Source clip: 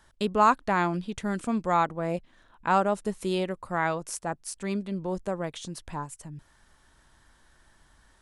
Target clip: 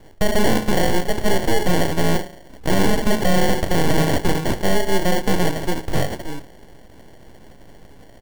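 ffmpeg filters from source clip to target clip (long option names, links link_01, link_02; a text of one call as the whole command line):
ffmpeg -i in.wav -filter_complex "[0:a]asettb=1/sr,asplit=3[link_01][link_02][link_03];[link_01]atrim=end=5.254[link_04];[link_02]atrim=start=5.25:end=5.99,asetpts=PTS-STARTPTS,afade=type=in:duration=0.004:curve=qsin,afade=type=out:start_time=0.736:duration=0.004:curve=qsin,tiltshelf=frequency=1200:gain=3.5[link_05];[link_03]atrim=start=5.986[link_06];[link_04][link_05]acrossfade=duration=0.004:curve1=hsin:curve2=qsin[link_07];[link_07][link_06]acrossfade=duration=0.004:curve1=qsin:curve2=hsin,acrossover=split=240|430|1500[link_08][link_09][link_10][link_11];[link_11]asoftclip=type=tanh:threshold=-37.5dB[link_12];[link_08][link_09][link_10][link_12]amix=inputs=4:normalize=0,asettb=1/sr,asplit=3[link_13][link_14][link_15];[link_13]atrim=end=2.734[link_16];[link_14]atrim=start=2.73:end=4.56,asetpts=PTS-STARTPTS,afade=type=in:duration=0.004:curve=qsin,afade=type=out:start_time=1.826:duration=0.004:curve=qsin,acontrast=32[link_17];[link_15]atrim=start=4.556[link_18];[link_16][link_17]acrossfade=duration=0.004:curve1=hsin:curve2=qsin[link_19];[link_19][link_18]acrossfade=duration=0.004:curve1=qsin:curve2=hsin,aecho=1:1:31|69:0.299|0.158,aeval=exprs='abs(val(0))':channel_layout=same,highshelf=frequency=9600:gain=9,bandreject=frequency=53.57:width_type=h:width=4,bandreject=frequency=107.14:width_type=h:width=4,bandreject=frequency=160.71:width_type=h:width=4,bandreject=frequency=214.28:width_type=h:width=4,bandreject=frequency=267.85:width_type=h:width=4,bandreject=frequency=321.42:width_type=h:width=4,bandreject=frequency=374.99:width_type=h:width=4,bandreject=frequency=428.56:width_type=h:width=4,bandreject=frequency=482.13:width_type=h:width=4,bandreject=frequency=535.7:width_type=h:width=4,bandreject=frequency=589.27:width_type=h:width=4,bandreject=frequency=642.84:width_type=h:width=4,bandreject=frequency=696.41:width_type=h:width=4,bandreject=frequency=749.98:width_type=h:width=4,bandreject=frequency=803.55:width_type=h:width=4,bandreject=frequency=857.12:width_type=h:width=4,bandreject=frequency=910.69:width_type=h:width=4,bandreject=frequency=964.26:width_type=h:width=4,bandreject=frequency=1017.83:width_type=h:width=4,bandreject=frequency=1071.4:width_type=h:width=4,bandreject=frequency=1124.97:width_type=h:width=4,bandreject=frequency=1178.54:width_type=h:width=4,bandreject=frequency=1232.11:width_type=h:width=4,bandreject=frequency=1285.68:width_type=h:width=4,bandreject=frequency=1339.25:width_type=h:width=4,bandreject=frequency=1392.82:width_type=h:width=4,bandreject=frequency=1446.39:width_type=h:width=4,bandreject=frequency=1499.96:width_type=h:width=4,bandreject=frequency=1553.53:width_type=h:width=4,bandreject=frequency=1607.1:width_type=h:width=4,bandreject=frequency=1660.67:width_type=h:width=4,bandreject=frequency=1714.24:width_type=h:width=4,bandreject=frequency=1767.81:width_type=h:width=4,acrusher=samples=35:mix=1:aa=0.000001,alimiter=level_in=23dB:limit=-1dB:release=50:level=0:latency=1,volume=-6.5dB" out.wav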